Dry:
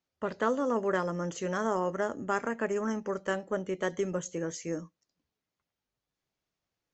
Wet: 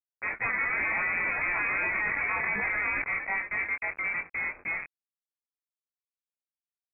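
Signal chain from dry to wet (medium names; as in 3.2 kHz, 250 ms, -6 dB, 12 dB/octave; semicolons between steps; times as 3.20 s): companded quantiser 2-bit; doubling 21 ms -3.5 dB; ever faster or slower copies 95 ms, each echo +5 st, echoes 2, each echo -6 dB; frequency inversion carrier 2.5 kHz; 0.79–3.04 s: level flattener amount 70%; trim -6 dB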